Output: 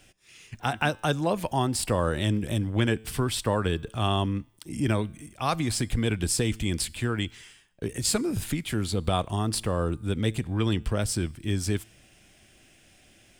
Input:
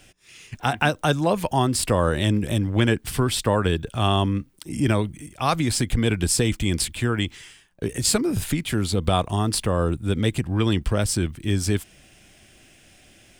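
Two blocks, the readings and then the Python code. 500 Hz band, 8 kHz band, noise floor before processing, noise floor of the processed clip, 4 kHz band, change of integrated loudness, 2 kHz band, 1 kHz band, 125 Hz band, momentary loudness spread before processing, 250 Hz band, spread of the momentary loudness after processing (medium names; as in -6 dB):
-5.0 dB, -5.0 dB, -54 dBFS, -58 dBFS, -5.0 dB, -4.5 dB, -5.0 dB, -5.0 dB, -4.5 dB, 5 LU, -5.0 dB, 6 LU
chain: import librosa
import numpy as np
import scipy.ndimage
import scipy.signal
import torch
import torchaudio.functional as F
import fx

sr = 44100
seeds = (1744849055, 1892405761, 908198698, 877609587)

y = fx.comb_fb(x, sr, f0_hz=110.0, decay_s=0.8, harmonics='all', damping=0.0, mix_pct=30)
y = y * librosa.db_to_amplitude(-2.0)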